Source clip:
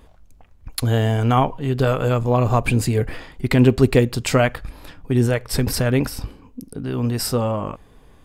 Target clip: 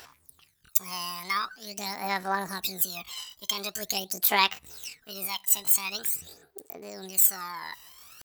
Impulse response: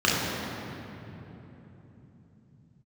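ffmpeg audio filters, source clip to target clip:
-af "aphaser=in_gain=1:out_gain=1:delay=1.6:decay=0.72:speed=0.45:type=sinusoidal,areverse,acompressor=mode=upward:threshold=0.158:ratio=2.5,areverse,asetrate=70004,aresample=44100,atempo=0.629961,aderivative"

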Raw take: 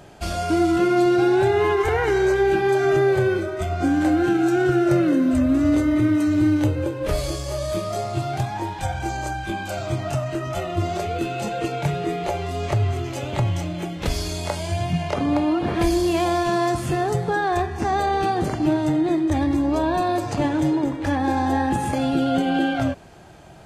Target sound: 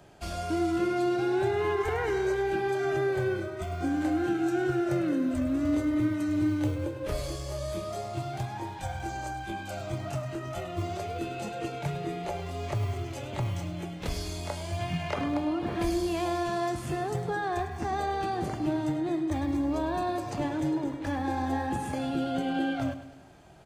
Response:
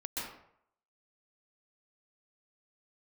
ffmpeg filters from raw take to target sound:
-filter_complex "[0:a]asettb=1/sr,asplit=3[s0][s1][s2];[s0]atrim=end=14.794[s3];[s1]atrim=start=14.79:end=15.28,asetpts=PTS-STARTPTS,afade=t=in:d=0.004:c=qsin,afade=t=out:st=0.486:d=0.004:c=qsin,equalizer=f=1800:w=0.64:g=6.5[s4];[s2]atrim=start=15.276[s5];[s3][s4]acrossfade=d=0.004:c1=hsin:c2=qsin[s6];[s6][s5]acrossfade=d=0.004:c1=qsin:c2=hsin,acrossover=split=100|780|1900[s7][s8][s9][s10];[s7]acrusher=samples=40:mix=1:aa=0.000001[s11];[s11][s8][s9][s10]amix=inputs=4:normalize=0,aecho=1:1:103|206|309|412|515:0.224|0.116|0.0605|0.0315|0.0164,volume=0.355"

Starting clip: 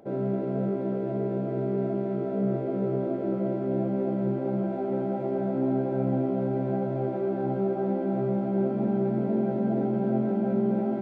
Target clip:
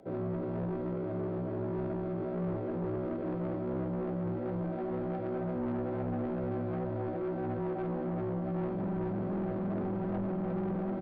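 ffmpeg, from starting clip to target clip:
-af "aresample=11025,asoftclip=type=tanh:threshold=0.0447,aresample=44100,afreqshift=-22,volume=0.708"

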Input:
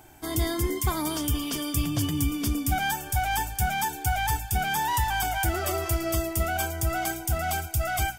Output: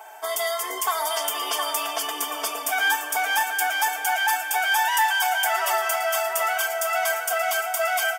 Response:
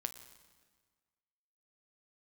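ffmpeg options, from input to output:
-filter_complex "[0:a]highpass=f=580:w=0.5412,highpass=f=580:w=1.3066,equalizer=f=740:t=o:w=2.8:g=11.5,bandreject=f=4100:w=6.3,aecho=1:1:4.5:0.98,acrossover=split=1500[s0][s1];[s0]acompressor=threshold=0.0355:ratio=5[s2];[s2][s1]amix=inputs=2:normalize=0,asplit=2[s3][s4];[s4]adelay=716,lowpass=f=2000:p=1,volume=0.531,asplit=2[s5][s6];[s6]adelay=716,lowpass=f=2000:p=1,volume=0.54,asplit=2[s7][s8];[s8]adelay=716,lowpass=f=2000:p=1,volume=0.54,asplit=2[s9][s10];[s10]adelay=716,lowpass=f=2000:p=1,volume=0.54,asplit=2[s11][s12];[s12]adelay=716,lowpass=f=2000:p=1,volume=0.54,asplit=2[s13][s14];[s14]adelay=716,lowpass=f=2000:p=1,volume=0.54,asplit=2[s15][s16];[s16]adelay=716,lowpass=f=2000:p=1,volume=0.54[s17];[s3][s5][s7][s9][s11][s13][s15][s17]amix=inputs=8:normalize=0,asplit=2[s18][s19];[1:a]atrim=start_sample=2205[s20];[s19][s20]afir=irnorm=-1:irlink=0,volume=2[s21];[s18][s21]amix=inputs=2:normalize=0,volume=0.398"

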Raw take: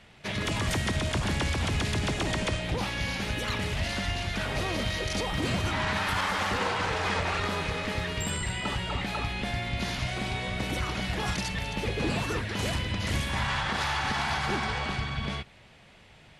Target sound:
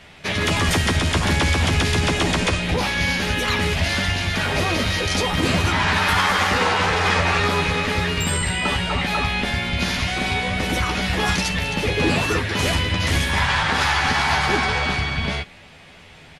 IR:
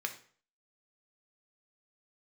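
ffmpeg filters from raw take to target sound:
-filter_complex "[0:a]asplit=2[s0][s1];[s1]adelay=12,volume=0.596[s2];[s0][s2]amix=inputs=2:normalize=0,asplit=2[s3][s4];[1:a]atrim=start_sample=2205,highshelf=f=8300:g=10[s5];[s4][s5]afir=irnorm=-1:irlink=0,volume=0.251[s6];[s3][s6]amix=inputs=2:normalize=0,volume=2.11"

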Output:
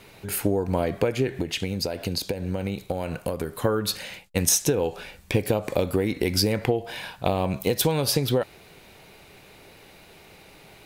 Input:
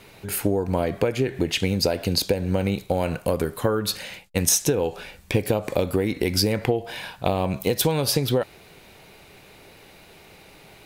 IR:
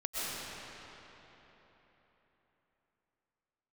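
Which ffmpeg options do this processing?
-filter_complex "[0:a]asettb=1/sr,asplit=3[s0][s1][s2];[s0]atrim=end=1.404[s3];[s1]atrim=start=1.4:end=3.61,asetpts=PTS-STARTPTS,afade=t=in:d=0.004:c=qsin,afade=t=out:st=2.206:d=0.004:c=qsin,acompressor=threshold=0.0708:ratio=6[s4];[s2]atrim=start=3.606[s5];[s3][s4]acrossfade=d=0.004:c1=hsin:c2=qsin[s6];[s6][s5]acrossfade=d=0.004:c1=qsin:c2=hsin,volume=0.891"

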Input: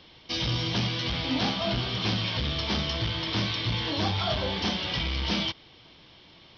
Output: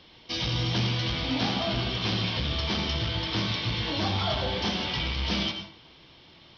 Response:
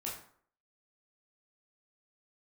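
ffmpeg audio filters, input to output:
-filter_complex "[0:a]asplit=2[s0][s1];[1:a]atrim=start_sample=2205,adelay=84[s2];[s1][s2]afir=irnorm=-1:irlink=0,volume=0.501[s3];[s0][s3]amix=inputs=2:normalize=0,volume=0.891"

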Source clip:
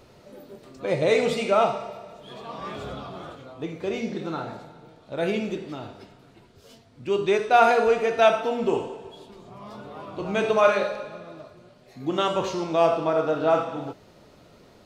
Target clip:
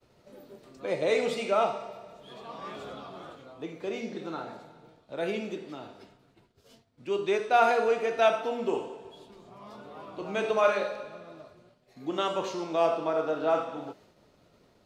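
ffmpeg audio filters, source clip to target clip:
-filter_complex "[0:a]agate=range=0.0224:threshold=0.00447:ratio=3:detection=peak,acrossover=split=180|650|2800[s0][s1][s2][s3];[s0]acompressor=threshold=0.00141:ratio=4[s4];[s4][s1][s2][s3]amix=inputs=4:normalize=0,volume=0.562"

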